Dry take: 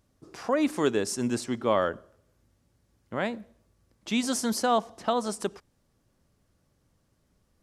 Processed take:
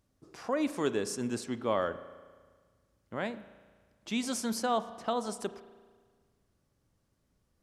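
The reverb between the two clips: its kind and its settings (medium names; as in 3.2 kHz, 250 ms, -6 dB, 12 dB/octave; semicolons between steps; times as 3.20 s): spring tank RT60 1.6 s, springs 35 ms, chirp 25 ms, DRR 13.5 dB; trim -5.5 dB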